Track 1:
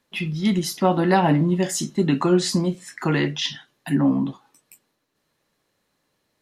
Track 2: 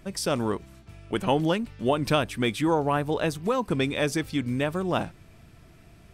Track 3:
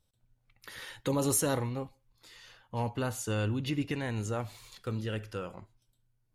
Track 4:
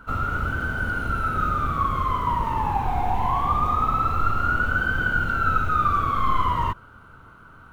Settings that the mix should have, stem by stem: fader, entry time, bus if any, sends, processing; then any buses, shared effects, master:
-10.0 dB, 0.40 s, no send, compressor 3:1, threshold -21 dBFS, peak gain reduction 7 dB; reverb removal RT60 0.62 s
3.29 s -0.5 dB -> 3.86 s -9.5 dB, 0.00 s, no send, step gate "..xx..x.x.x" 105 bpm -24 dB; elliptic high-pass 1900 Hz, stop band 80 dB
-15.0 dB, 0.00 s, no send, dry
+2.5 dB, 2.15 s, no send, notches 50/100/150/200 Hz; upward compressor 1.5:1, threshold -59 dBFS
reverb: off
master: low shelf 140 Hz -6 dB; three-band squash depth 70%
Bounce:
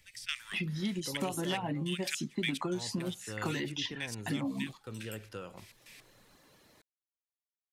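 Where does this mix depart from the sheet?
stem 4: muted; master: missing low shelf 140 Hz -6 dB

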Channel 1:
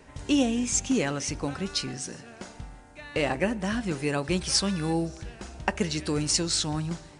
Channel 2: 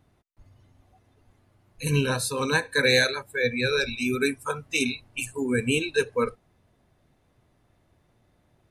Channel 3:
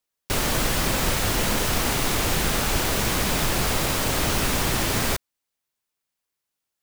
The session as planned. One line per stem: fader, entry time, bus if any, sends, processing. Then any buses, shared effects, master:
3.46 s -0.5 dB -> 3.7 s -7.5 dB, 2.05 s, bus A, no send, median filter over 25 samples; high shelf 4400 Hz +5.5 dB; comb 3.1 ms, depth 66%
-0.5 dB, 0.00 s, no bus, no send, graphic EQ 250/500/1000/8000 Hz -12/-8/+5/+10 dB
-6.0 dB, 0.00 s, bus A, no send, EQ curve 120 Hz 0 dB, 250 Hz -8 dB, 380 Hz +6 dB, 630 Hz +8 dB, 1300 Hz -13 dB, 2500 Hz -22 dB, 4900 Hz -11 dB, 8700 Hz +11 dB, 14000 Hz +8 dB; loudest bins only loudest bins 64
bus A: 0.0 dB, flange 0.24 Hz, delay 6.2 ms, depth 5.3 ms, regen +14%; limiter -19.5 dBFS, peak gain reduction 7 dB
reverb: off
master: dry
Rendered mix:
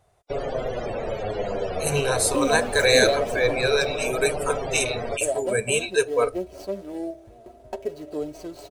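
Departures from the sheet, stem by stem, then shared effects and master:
stem 3: missing EQ curve 120 Hz 0 dB, 250 Hz -8 dB, 380 Hz +6 dB, 630 Hz +8 dB, 1300 Hz -13 dB, 2500 Hz -22 dB, 4900 Hz -11 dB, 8700 Hz +11 dB, 14000 Hz +8 dB; master: extra band shelf 540 Hz +14 dB 1.1 oct

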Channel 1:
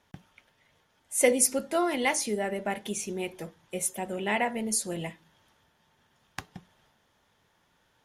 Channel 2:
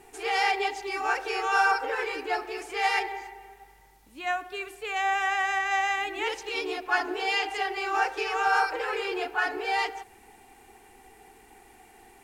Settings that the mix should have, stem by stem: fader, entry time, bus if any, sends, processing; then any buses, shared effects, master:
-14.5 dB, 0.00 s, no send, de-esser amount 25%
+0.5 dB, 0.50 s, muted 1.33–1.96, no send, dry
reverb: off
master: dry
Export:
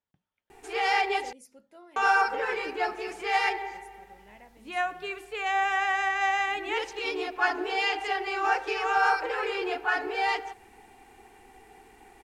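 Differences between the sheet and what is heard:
stem 1 -14.5 dB -> -25.0 dB; master: extra high shelf 7100 Hz -8.5 dB

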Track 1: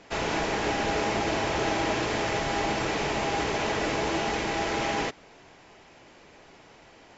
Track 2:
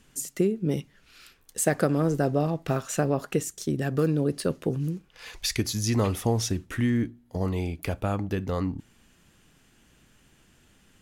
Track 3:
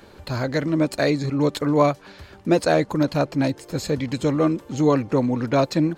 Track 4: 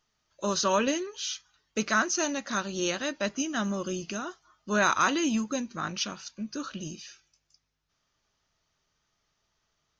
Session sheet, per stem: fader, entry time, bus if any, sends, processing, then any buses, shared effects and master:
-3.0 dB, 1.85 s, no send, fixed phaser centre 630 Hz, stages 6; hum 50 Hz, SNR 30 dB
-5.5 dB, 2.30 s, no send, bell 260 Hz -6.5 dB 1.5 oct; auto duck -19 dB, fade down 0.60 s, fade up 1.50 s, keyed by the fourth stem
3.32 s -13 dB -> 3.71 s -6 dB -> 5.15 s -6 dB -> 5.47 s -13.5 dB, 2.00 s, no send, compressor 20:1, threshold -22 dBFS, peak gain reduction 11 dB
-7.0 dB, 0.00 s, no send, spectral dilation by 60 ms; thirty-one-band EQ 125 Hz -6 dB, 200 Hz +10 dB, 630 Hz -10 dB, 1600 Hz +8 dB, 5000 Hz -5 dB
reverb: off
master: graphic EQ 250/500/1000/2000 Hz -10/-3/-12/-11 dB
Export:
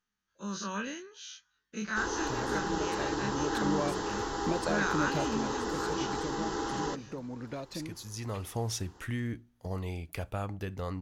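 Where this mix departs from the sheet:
stem 4 -7.0 dB -> -15.0 dB; master: missing graphic EQ 250/500/1000/2000 Hz -10/-3/-12/-11 dB

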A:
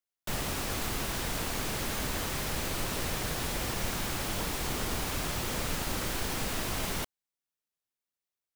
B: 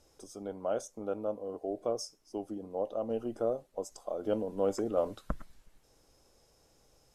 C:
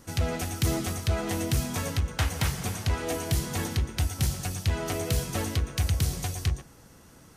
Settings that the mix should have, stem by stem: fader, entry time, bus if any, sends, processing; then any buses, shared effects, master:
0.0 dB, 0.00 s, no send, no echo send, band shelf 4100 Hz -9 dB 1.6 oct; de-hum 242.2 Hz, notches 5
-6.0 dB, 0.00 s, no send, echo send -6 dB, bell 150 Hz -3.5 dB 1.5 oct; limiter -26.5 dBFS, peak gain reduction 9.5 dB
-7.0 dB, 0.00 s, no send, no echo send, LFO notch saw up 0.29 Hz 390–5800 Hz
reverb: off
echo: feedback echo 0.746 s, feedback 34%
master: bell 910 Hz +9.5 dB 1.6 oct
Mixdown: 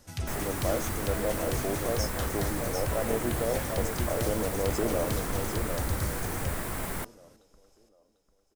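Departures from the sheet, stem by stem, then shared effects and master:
stem B -6.0 dB -> +5.0 dB; master: missing bell 910 Hz +9.5 dB 1.6 oct

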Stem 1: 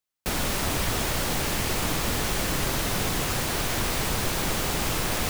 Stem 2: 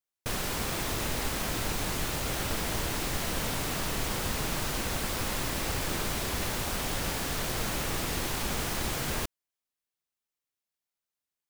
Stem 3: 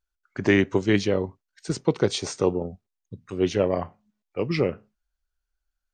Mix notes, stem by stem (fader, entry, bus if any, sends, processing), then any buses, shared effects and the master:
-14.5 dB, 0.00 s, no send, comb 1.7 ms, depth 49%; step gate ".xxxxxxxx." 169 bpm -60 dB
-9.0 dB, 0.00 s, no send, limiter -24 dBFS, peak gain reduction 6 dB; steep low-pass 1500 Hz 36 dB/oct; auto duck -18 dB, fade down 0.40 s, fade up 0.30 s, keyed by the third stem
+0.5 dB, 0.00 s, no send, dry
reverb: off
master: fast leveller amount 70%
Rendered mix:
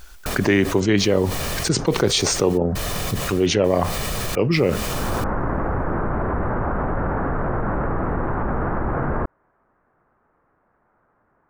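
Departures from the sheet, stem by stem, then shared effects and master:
stem 1 -14.5 dB -> -23.5 dB; stem 2 -9.0 dB -> -3.0 dB

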